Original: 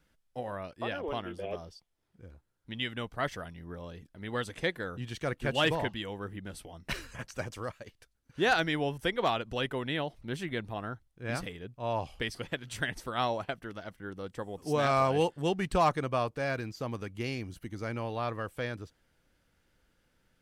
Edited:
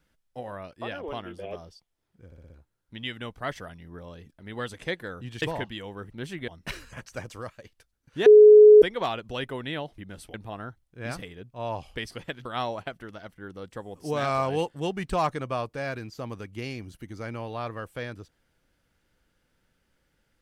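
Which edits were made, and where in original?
0:02.26: stutter 0.06 s, 5 plays
0:05.18–0:05.66: remove
0:06.34–0:06.70: swap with 0:10.20–0:10.58
0:08.48–0:09.04: beep over 423 Hz −8 dBFS
0:12.69–0:13.07: remove

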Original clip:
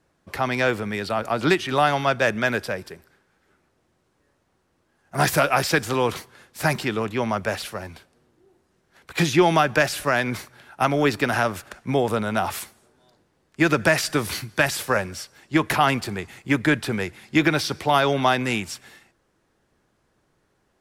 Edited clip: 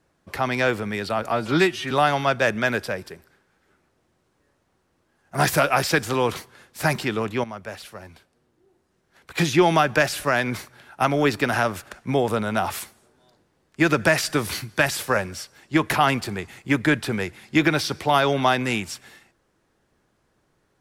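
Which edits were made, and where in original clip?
0:01.31–0:01.71: time-stretch 1.5×
0:07.24–0:09.44: fade in, from −12 dB

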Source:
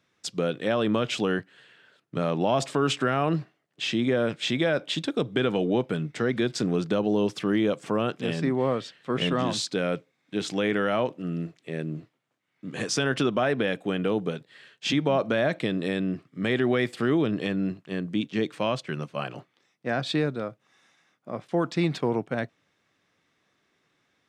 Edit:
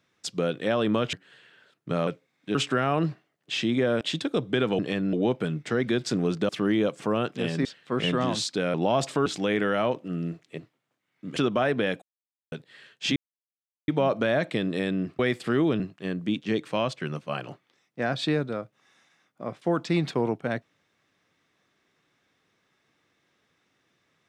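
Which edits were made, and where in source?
0:01.13–0:01.39: remove
0:02.33–0:02.85: swap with 0:09.92–0:10.40
0:04.31–0:04.84: remove
0:06.98–0:07.33: remove
0:08.49–0:08.83: remove
0:11.72–0:11.98: remove
0:12.76–0:13.17: remove
0:13.83–0:14.33: silence
0:14.97: splice in silence 0.72 s
0:16.28–0:16.72: remove
0:17.33–0:17.67: move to 0:05.62

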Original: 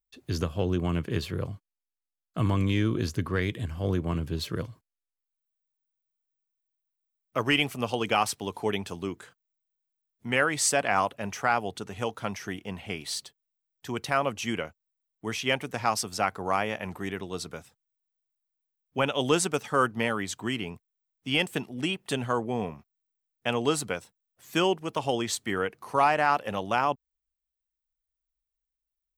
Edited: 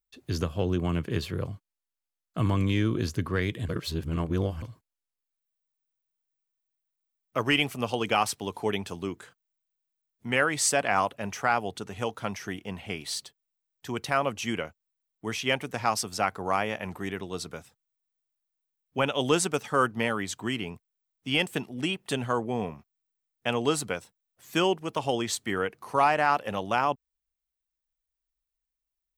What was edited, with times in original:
0:03.69–0:04.62: reverse

